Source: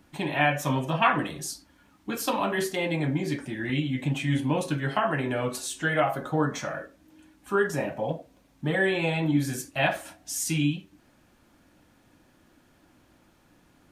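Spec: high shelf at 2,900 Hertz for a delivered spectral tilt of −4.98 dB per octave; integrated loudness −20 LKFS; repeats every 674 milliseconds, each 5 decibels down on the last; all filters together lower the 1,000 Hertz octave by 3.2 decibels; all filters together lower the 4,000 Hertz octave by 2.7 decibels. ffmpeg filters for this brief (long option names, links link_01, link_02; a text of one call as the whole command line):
ffmpeg -i in.wav -af "equalizer=frequency=1000:width_type=o:gain=-4.5,highshelf=frequency=2900:gain=3,equalizer=frequency=4000:width_type=o:gain=-6,aecho=1:1:674|1348|2022|2696|3370|4044|4718:0.562|0.315|0.176|0.0988|0.0553|0.031|0.0173,volume=7.5dB" out.wav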